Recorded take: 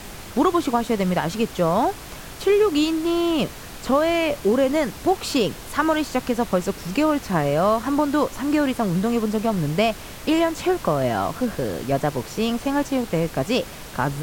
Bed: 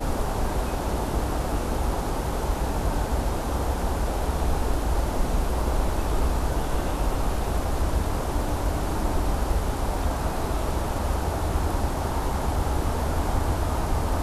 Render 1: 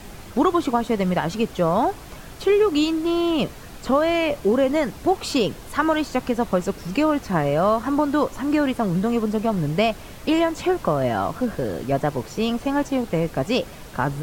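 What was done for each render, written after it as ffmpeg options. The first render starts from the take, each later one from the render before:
ffmpeg -i in.wav -af "afftdn=noise_reduction=6:noise_floor=-38" out.wav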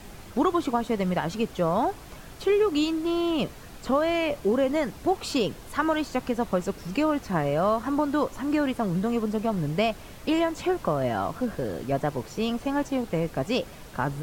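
ffmpeg -i in.wav -af "volume=-4.5dB" out.wav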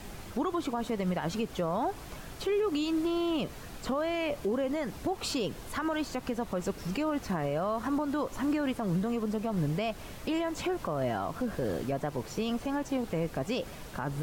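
ffmpeg -i in.wav -af "alimiter=limit=-22.5dB:level=0:latency=1:release=116" out.wav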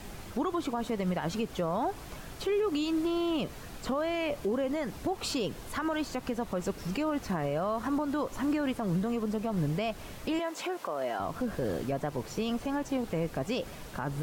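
ffmpeg -i in.wav -filter_complex "[0:a]asettb=1/sr,asplit=3[link_01][link_02][link_03];[link_01]atrim=end=10.394[link_04];[link_02]atrim=start=10.39:end=11.2,asetpts=PTS-STARTPTS,afade=type=in:duration=0.004:curve=qsin,afade=type=out:start_time=0.806:duration=0.004:curve=qsin,highpass=400[link_05];[link_03]atrim=start=11.196[link_06];[link_04][link_05]acrossfade=duration=0.004:curve1=hsin:curve2=qsin[link_07];[link_07][link_06]acrossfade=duration=0.004:curve1=qsin:curve2=hsin" out.wav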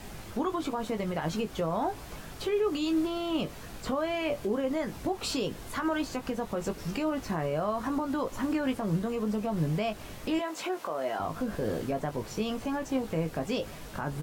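ffmpeg -i in.wav -filter_complex "[0:a]asplit=2[link_01][link_02];[link_02]adelay=19,volume=-7dB[link_03];[link_01][link_03]amix=inputs=2:normalize=0" out.wav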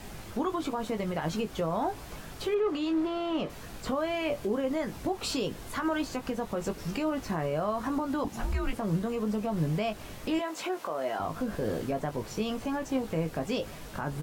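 ffmpeg -i in.wav -filter_complex "[0:a]asettb=1/sr,asplit=3[link_01][link_02][link_03];[link_01]atrim=end=2.544[link_04];[link_02]atrim=start=2.54:end=3.5,asetpts=PTS-STARTPTS,afade=type=in:duration=0.004:curve=qsin,afade=type=out:start_time=0.956:duration=0.004:curve=qsin,asplit=2[link_05][link_06];[link_06]highpass=frequency=720:poles=1,volume=12dB,asoftclip=type=tanh:threshold=-19.5dB[link_07];[link_05][link_07]amix=inputs=2:normalize=0,lowpass=frequency=1200:poles=1,volume=-6dB[link_08];[link_03]atrim=start=3.496[link_09];[link_04][link_08]acrossfade=duration=0.004:curve1=hsin:curve2=qsin[link_10];[link_10][link_09]acrossfade=duration=0.004:curve1=qsin:curve2=hsin,asettb=1/sr,asplit=3[link_11][link_12][link_13];[link_11]atrim=end=8.244[link_14];[link_12]atrim=start=8.24:end=8.73,asetpts=PTS-STARTPTS,afade=type=in:duration=0.004:curve=qsin,afade=type=out:start_time=0.486:duration=0.004:curve=qsin,afreqshift=-240[link_15];[link_13]atrim=start=8.726[link_16];[link_14][link_15]acrossfade=duration=0.004:curve1=hsin:curve2=qsin[link_17];[link_17][link_16]acrossfade=duration=0.004:curve1=qsin:curve2=hsin" out.wav

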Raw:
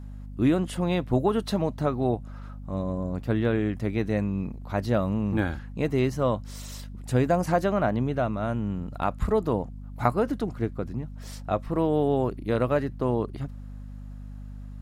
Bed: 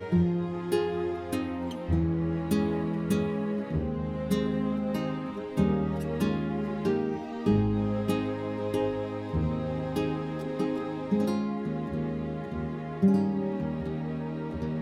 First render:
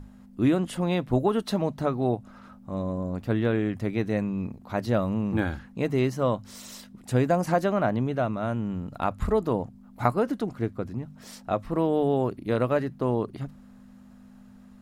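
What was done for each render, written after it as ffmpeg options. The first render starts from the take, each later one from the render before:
ffmpeg -i in.wav -af "bandreject=frequency=50:width_type=h:width=6,bandreject=frequency=100:width_type=h:width=6,bandreject=frequency=150:width_type=h:width=6" out.wav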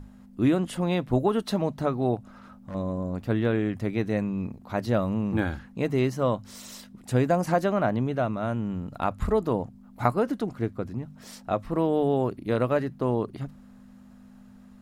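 ffmpeg -i in.wav -filter_complex "[0:a]asettb=1/sr,asplit=3[link_01][link_02][link_03];[link_01]atrim=end=2.164[link_04];[link_02]atrim=start=2.16:end=2.75,asetpts=PTS-STARTPTS,afade=type=in:duration=0.004:curve=qsin,afade=type=out:start_time=0.586:duration=0.004:curve=qsin,volume=33dB,asoftclip=hard,volume=-33dB[link_05];[link_03]atrim=start=2.746[link_06];[link_04][link_05]acrossfade=duration=0.004:curve1=hsin:curve2=qsin[link_07];[link_07][link_06]acrossfade=duration=0.004:curve1=qsin:curve2=hsin" out.wav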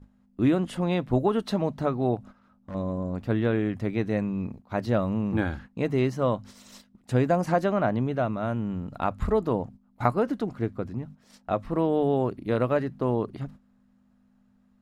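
ffmpeg -i in.wav -af "agate=range=-13dB:threshold=-42dB:ratio=16:detection=peak,highshelf=frequency=7400:gain=-9" out.wav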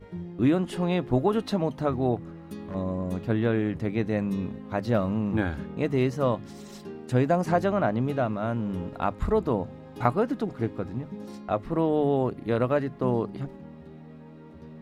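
ffmpeg -i in.wav -i bed.wav -filter_complex "[1:a]volume=-13dB[link_01];[0:a][link_01]amix=inputs=2:normalize=0" out.wav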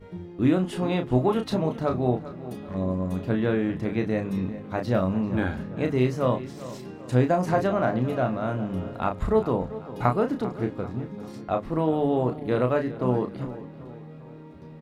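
ffmpeg -i in.wav -filter_complex "[0:a]asplit=2[link_01][link_02];[link_02]adelay=32,volume=-6dB[link_03];[link_01][link_03]amix=inputs=2:normalize=0,asplit=2[link_04][link_05];[link_05]adelay=393,lowpass=frequency=4500:poles=1,volume=-15dB,asplit=2[link_06][link_07];[link_07]adelay=393,lowpass=frequency=4500:poles=1,volume=0.47,asplit=2[link_08][link_09];[link_09]adelay=393,lowpass=frequency=4500:poles=1,volume=0.47,asplit=2[link_10][link_11];[link_11]adelay=393,lowpass=frequency=4500:poles=1,volume=0.47[link_12];[link_04][link_06][link_08][link_10][link_12]amix=inputs=5:normalize=0" out.wav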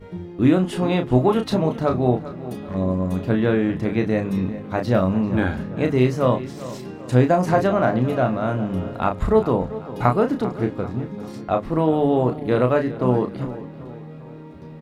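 ffmpeg -i in.wav -af "volume=5dB,alimiter=limit=-2dB:level=0:latency=1" out.wav

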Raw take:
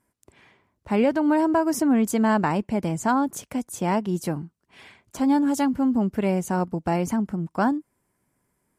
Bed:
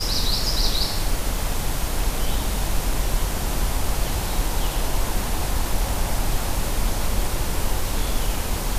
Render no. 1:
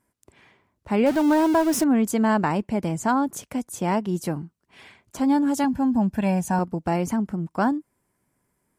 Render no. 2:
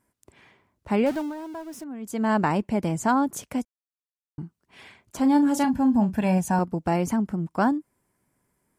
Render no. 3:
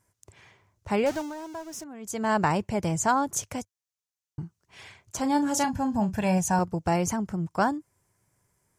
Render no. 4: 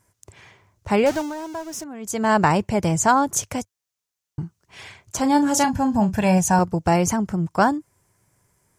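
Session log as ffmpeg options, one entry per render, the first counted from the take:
ffmpeg -i in.wav -filter_complex "[0:a]asettb=1/sr,asplit=3[link_01][link_02][link_03];[link_01]atrim=end=1.064[link_04];[link_02]atrim=start=1.06:end=1.84,asetpts=PTS-STARTPTS,afade=type=in:duration=0.004:curve=qsin,afade=type=out:start_time=0.776:duration=0.004:curve=qsin,aeval=exprs='val(0)+0.5*0.0447*sgn(val(0))':channel_layout=same[link_05];[link_03]atrim=start=1.836[link_06];[link_04][link_05]acrossfade=duration=0.004:curve1=hsin:curve2=qsin[link_07];[link_07][link_06]acrossfade=duration=0.004:curve1=qsin:curve2=hsin,asettb=1/sr,asplit=3[link_08][link_09][link_10];[link_08]atrim=end=5.644[link_11];[link_09]atrim=start=5.64:end=6.59,asetpts=PTS-STARTPTS,afade=type=in:duration=0.004:curve=qsin,afade=type=out:start_time=0.946:duration=0.004:curve=qsin,aecho=1:1:1.2:0.66,atrim=end_sample=41895[link_12];[link_10]atrim=start=6.586[link_13];[link_11][link_12]acrossfade=duration=0.004:curve1=hsin:curve2=qsin[link_14];[link_14][link_13]acrossfade=duration=0.004:curve1=qsin:curve2=hsin" out.wav
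ffmpeg -i in.wav -filter_complex "[0:a]asettb=1/sr,asplit=3[link_01][link_02][link_03];[link_01]atrim=end=5.214[link_04];[link_02]atrim=start=5.21:end=6.38,asetpts=PTS-STARTPTS,afade=type=in:duration=0.004:curve=qsin,afade=type=out:start_time=1.166:duration=0.004:curve=qsin,asplit=2[link_05][link_06];[link_06]adelay=38,volume=-11dB[link_07];[link_05][link_07]amix=inputs=2:normalize=0,atrim=end_sample=51597[link_08];[link_03]atrim=start=6.376[link_09];[link_04][link_08]acrossfade=duration=0.004:curve1=hsin:curve2=qsin[link_10];[link_10][link_09]acrossfade=duration=0.004:curve1=qsin:curve2=hsin,asplit=5[link_11][link_12][link_13][link_14][link_15];[link_11]atrim=end=1.33,asetpts=PTS-STARTPTS,afade=type=out:start_time=0.92:duration=0.41:silence=0.141254[link_16];[link_12]atrim=start=1.33:end=2,asetpts=PTS-STARTPTS,volume=-17dB[link_17];[link_13]atrim=start=2:end=3.65,asetpts=PTS-STARTPTS,afade=type=in:duration=0.41:silence=0.141254,afade=type=out:start_time=1.646:duration=0.004:curve=hsin[link_18];[link_14]atrim=start=3.65:end=4.38,asetpts=PTS-STARTPTS,volume=0[link_19];[link_15]atrim=start=4.38,asetpts=PTS-STARTPTS,afade=type=in:duration=0.004:curve=hsin[link_20];[link_16][link_17][link_18][link_19][link_20]concat=n=5:v=0:a=1" out.wav
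ffmpeg -i in.wav -af "equalizer=frequency=100:width_type=o:width=0.67:gain=9,equalizer=frequency=250:width_type=o:width=0.67:gain=-9,equalizer=frequency=6300:width_type=o:width=0.67:gain=9" out.wav
ffmpeg -i in.wav -af "volume=6.5dB" out.wav

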